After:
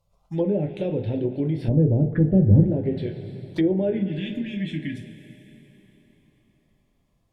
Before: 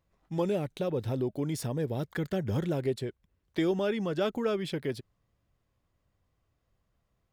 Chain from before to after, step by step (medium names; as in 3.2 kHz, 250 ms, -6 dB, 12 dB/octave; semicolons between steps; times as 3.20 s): 3.98–5.56 s: spectral selection erased 330–1600 Hz; touch-sensitive phaser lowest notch 300 Hz, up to 1.2 kHz, full sweep at -30.5 dBFS; 1.68–2.68 s: tilt EQ -3 dB/octave; two-slope reverb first 0.27 s, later 3.9 s, from -19 dB, DRR 2.5 dB; low-pass that closes with the level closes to 830 Hz, closed at -22.5 dBFS; trim +5 dB